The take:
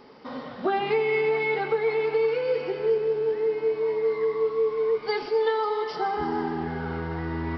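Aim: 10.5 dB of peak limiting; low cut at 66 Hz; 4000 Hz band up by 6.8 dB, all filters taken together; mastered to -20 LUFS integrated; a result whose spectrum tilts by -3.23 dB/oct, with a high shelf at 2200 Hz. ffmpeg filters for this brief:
-af "highpass=66,highshelf=f=2.2k:g=4,equalizer=f=4k:t=o:g=5,volume=10dB,alimiter=limit=-13dB:level=0:latency=1"

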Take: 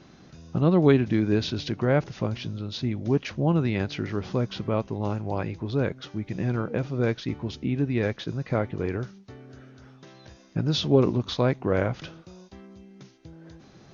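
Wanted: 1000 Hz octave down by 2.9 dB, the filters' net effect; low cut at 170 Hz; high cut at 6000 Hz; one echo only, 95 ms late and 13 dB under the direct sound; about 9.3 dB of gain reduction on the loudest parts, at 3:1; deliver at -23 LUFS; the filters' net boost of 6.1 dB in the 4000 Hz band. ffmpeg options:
-af "highpass=170,lowpass=6k,equalizer=f=1k:t=o:g=-4.5,equalizer=f=4k:t=o:g=8,acompressor=threshold=-27dB:ratio=3,aecho=1:1:95:0.224,volume=9dB"

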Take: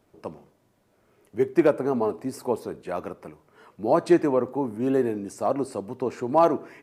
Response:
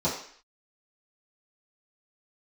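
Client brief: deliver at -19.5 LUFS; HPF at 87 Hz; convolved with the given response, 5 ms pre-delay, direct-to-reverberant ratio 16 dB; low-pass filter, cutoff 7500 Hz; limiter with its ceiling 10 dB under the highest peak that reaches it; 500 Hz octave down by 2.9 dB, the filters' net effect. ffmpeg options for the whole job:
-filter_complex "[0:a]highpass=87,lowpass=7.5k,equalizer=f=500:t=o:g=-4,alimiter=limit=-19dB:level=0:latency=1,asplit=2[a][b];[1:a]atrim=start_sample=2205,adelay=5[c];[b][c]afir=irnorm=-1:irlink=0,volume=-27dB[d];[a][d]amix=inputs=2:normalize=0,volume=11.5dB"

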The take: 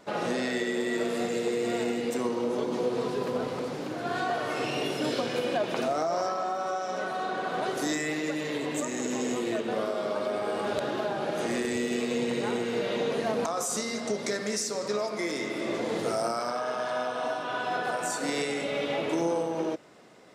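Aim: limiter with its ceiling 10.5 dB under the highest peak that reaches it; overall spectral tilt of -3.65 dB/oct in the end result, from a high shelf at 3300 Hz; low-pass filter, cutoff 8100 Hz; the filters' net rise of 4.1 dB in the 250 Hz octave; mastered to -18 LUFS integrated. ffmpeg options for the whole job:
-af "lowpass=8.1k,equalizer=f=250:t=o:g=5,highshelf=f=3.3k:g=6.5,volume=14.5dB,alimiter=limit=-9.5dB:level=0:latency=1"

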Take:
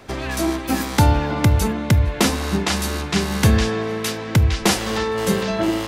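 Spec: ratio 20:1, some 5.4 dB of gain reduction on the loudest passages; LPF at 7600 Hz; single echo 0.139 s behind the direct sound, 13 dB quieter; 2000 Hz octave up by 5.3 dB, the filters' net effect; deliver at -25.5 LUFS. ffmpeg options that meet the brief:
-af "lowpass=7.6k,equalizer=f=2k:t=o:g=6.5,acompressor=threshold=-15dB:ratio=20,aecho=1:1:139:0.224,volume=-4dB"

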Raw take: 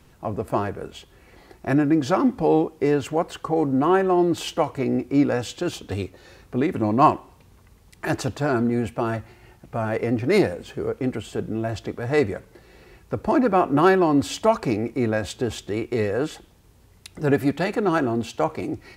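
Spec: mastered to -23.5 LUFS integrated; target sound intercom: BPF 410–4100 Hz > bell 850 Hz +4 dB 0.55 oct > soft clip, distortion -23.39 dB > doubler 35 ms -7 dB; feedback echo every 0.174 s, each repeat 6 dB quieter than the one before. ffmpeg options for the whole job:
-filter_complex "[0:a]highpass=410,lowpass=4.1k,equalizer=f=850:t=o:w=0.55:g=4,aecho=1:1:174|348|522|696|870|1044:0.501|0.251|0.125|0.0626|0.0313|0.0157,asoftclip=threshold=-5.5dB,asplit=2[a][b];[b]adelay=35,volume=-7dB[c];[a][c]amix=inputs=2:normalize=0,volume=0.5dB"

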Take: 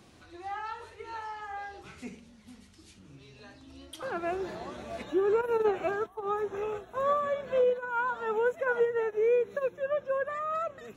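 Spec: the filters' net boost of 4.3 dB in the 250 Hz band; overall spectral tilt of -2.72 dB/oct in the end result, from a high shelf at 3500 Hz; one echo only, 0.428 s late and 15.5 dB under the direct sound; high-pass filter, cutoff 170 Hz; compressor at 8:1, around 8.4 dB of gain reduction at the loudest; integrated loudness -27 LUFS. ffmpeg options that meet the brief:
-af "highpass=170,equalizer=f=250:t=o:g=8,highshelf=f=3.5k:g=6,acompressor=threshold=-28dB:ratio=8,aecho=1:1:428:0.168,volume=7dB"

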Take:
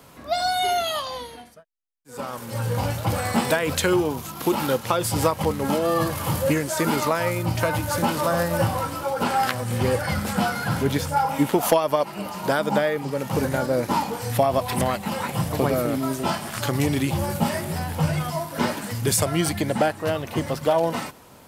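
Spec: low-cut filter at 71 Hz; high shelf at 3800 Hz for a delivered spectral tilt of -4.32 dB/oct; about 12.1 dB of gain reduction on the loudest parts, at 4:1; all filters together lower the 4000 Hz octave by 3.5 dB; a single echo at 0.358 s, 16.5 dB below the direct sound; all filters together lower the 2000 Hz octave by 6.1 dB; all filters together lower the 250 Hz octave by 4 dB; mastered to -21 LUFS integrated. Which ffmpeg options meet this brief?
-af "highpass=71,equalizer=f=250:t=o:g=-5.5,equalizer=f=2k:t=o:g=-8.5,highshelf=f=3.8k:g=3.5,equalizer=f=4k:t=o:g=-4,acompressor=threshold=-31dB:ratio=4,aecho=1:1:358:0.15,volume=12.5dB"

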